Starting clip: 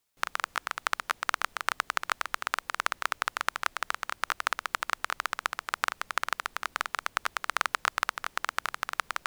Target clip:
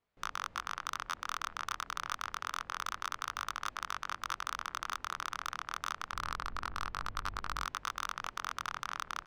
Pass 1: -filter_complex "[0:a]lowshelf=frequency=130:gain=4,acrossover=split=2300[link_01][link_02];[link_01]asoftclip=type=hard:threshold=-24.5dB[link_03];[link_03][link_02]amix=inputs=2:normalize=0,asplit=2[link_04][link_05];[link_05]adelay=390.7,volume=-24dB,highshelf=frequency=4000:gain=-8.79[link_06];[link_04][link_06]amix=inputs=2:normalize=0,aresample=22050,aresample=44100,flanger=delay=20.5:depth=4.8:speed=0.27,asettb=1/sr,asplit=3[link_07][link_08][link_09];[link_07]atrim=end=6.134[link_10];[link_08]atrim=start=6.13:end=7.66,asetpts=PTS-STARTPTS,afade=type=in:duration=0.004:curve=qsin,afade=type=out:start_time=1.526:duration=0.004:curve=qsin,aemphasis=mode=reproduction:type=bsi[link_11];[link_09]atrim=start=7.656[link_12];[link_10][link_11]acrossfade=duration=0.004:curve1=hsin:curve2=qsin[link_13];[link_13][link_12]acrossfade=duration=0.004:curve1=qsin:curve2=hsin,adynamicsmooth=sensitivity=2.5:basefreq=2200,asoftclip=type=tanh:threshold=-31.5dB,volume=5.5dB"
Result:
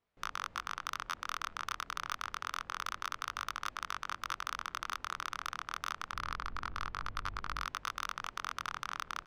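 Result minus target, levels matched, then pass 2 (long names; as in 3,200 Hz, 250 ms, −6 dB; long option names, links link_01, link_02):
hard clipping: distortion +13 dB
-filter_complex "[0:a]lowshelf=frequency=130:gain=4,acrossover=split=2300[link_01][link_02];[link_01]asoftclip=type=hard:threshold=-13dB[link_03];[link_03][link_02]amix=inputs=2:normalize=0,asplit=2[link_04][link_05];[link_05]adelay=390.7,volume=-24dB,highshelf=frequency=4000:gain=-8.79[link_06];[link_04][link_06]amix=inputs=2:normalize=0,aresample=22050,aresample=44100,flanger=delay=20.5:depth=4.8:speed=0.27,asettb=1/sr,asplit=3[link_07][link_08][link_09];[link_07]atrim=end=6.134[link_10];[link_08]atrim=start=6.13:end=7.66,asetpts=PTS-STARTPTS,afade=type=in:duration=0.004:curve=qsin,afade=type=out:start_time=1.526:duration=0.004:curve=qsin,aemphasis=mode=reproduction:type=bsi[link_11];[link_09]atrim=start=7.656[link_12];[link_10][link_11]acrossfade=duration=0.004:curve1=hsin:curve2=qsin[link_13];[link_13][link_12]acrossfade=duration=0.004:curve1=qsin:curve2=hsin,adynamicsmooth=sensitivity=2.5:basefreq=2200,asoftclip=type=tanh:threshold=-31.5dB,volume=5.5dB"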